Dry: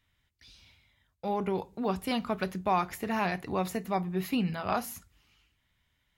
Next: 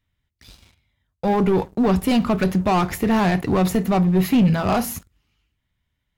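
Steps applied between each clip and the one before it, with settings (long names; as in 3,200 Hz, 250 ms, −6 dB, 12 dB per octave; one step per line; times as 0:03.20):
leveller curve on the samples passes 3
low-shelf EQ 480 Hz +8 dB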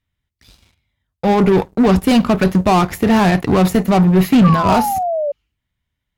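harmonic generator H 7 −22 dB, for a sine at −10 dBFS
sound drawn into the spectrogram fall, 0:04.44–0:05.32, 560–1,200 Hz −24 dBFS
level +5.5 dB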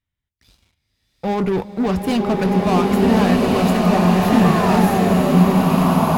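slow-attack reverb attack 1,530 ms, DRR −4.5 dB
level −7 dB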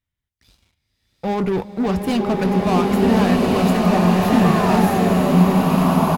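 slap from a distant wall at 110 metres, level −13 dB
level −1 dB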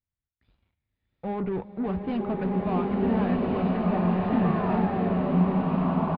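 high-frequency loss of the air 490 metres
downsampling to 11,025 Hz
level −8 dB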